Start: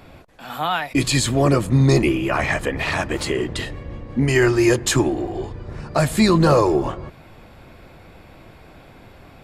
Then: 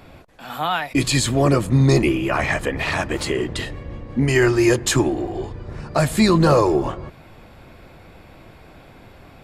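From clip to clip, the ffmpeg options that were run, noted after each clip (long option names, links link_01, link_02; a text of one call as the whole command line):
ffmpeg -i in.wav -af anull out.wav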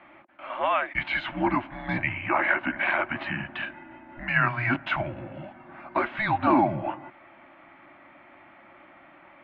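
ffmpeg -i in.wav -af "asuperstop=centerf=680:order=8:qfactor=3.8,highpass=frequency=560:width_type=q:width=0.5412,highpass=frequency=560:width_type=q:width=1.307,lowpass=frequency=2900:width_type=q:width=0.5176,lowpass=frequency=2900:width_type=q:width=0.7071,lowpass=frequency=2900:width_type=q:width=1.932,afreqshift=-230" out.wav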